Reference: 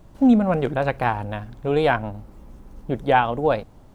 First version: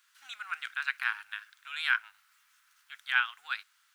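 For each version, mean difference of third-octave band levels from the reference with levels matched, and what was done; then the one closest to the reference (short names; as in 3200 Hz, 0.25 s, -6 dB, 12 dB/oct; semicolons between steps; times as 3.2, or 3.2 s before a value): 18.0 dB: elliptic high-pass 1400 Hz, stop band 60 dB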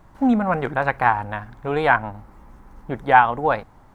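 3.0 dB: band shelf 1300 Hz +9.5 dB; gain -3 dB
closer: second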